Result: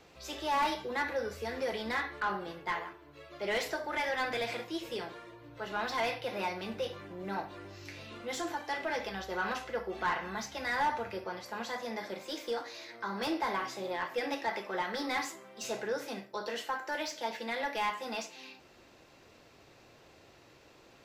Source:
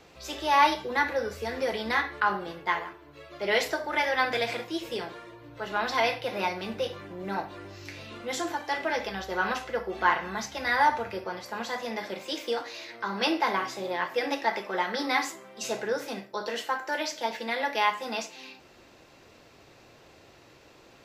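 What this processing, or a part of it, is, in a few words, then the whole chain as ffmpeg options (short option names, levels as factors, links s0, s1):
saturation between pre-emphasis and de-emphasis: -filter_complex "[0:a]highshelf=f=2200:g=11.5,asoftclip=type=tanh:threshold=0.119,highshelf=f=2200:g=-11.5,asettb=1/sr,asplit=3[s0][s1][s2];[s0]atrim=end=11.774[s3];[s1]atrim=start=11.77:end=13.51,asetpts=PTS-STARTPTS,afade=t=in:d=0.004:c=qsin,afade=t=out:st=1.736:d=0.004:c=qsin,equalizer=f=2800:w=3.5:g=-5.5[s4];[s2]atrim=start=13.506[s5];[s3][s4]acrossfade=d=0.004:c1=hsin:c2=qsin[s6];[s6][s5]acrossfade=d=0.004:c1=qsin:c2=hsin,volume=0.631"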